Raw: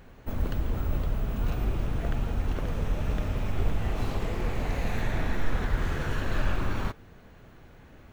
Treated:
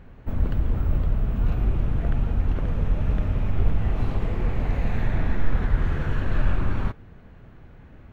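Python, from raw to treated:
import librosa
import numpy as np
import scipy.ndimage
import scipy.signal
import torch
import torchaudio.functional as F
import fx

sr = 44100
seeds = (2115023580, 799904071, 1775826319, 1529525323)

y = fx.bass_treble(x, sr, bass_db=6, treble_db=-12)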